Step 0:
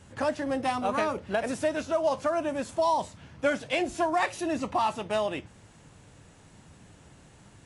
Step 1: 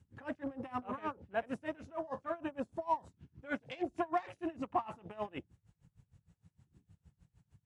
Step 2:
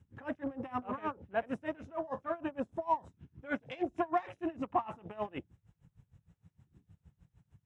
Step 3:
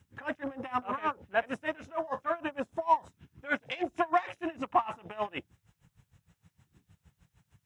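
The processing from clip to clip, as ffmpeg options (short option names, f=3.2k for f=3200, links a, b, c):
-af "bandreject=f=610:w=12,afwtdn=0.00891,aeval=exprs='val(0)*pow(10,-24*(0.5-0.5*cos(2*PI*6.5*n/s))/20)':c=same,volume=-3.5dB"
-af "highshelf=f=5.5k:g=-10,bandreject=f=4.5k:w=5.9,volume=2.5dB"
-af "tiltshelf=f=740:g=-6.5,volume=4.5dB"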